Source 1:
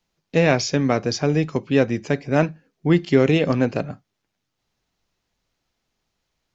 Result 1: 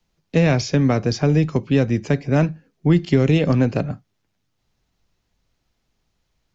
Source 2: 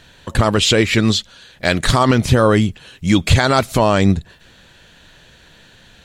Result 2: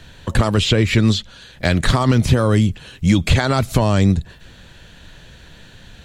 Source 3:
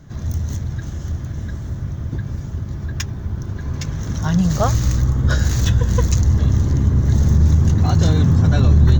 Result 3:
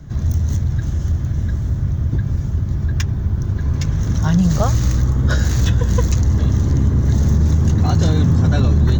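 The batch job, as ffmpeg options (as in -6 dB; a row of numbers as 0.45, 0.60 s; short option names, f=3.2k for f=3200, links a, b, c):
-filter_complex "[0:a]lowshelf=f=180:g=9,acrossover=split=200|3800[a][b][c];[a]acompressor=threshold=-15dB:ratio=4[d];[b]acompressor=threshold=-17dB:ratio=4[e];[c]acompressor=threshold=-31dB:ratio=4[f];[d][e][f]amix=inputs=3:normalize=0,asplit=2[g][h];[h]asoftclip=type=tanh:threshold=-8.5dB,volume=-9.5dB[i];[g][i]amix=inputs=2:normalize=0,volume=-1.5dB"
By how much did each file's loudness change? +1.5, -1.5, +1.0 LU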